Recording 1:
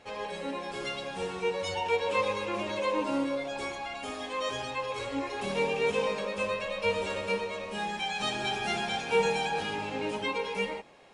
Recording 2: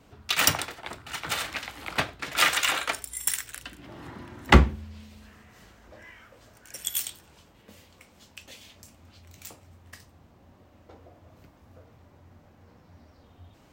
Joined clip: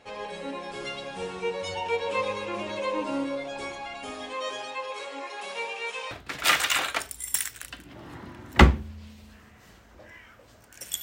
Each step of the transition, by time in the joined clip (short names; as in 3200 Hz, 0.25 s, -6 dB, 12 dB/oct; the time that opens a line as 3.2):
recording 1
4.33–6.11 HPF 280 Hz -> 1100 Hz
6.11 switch to recording 2 from 2.04 s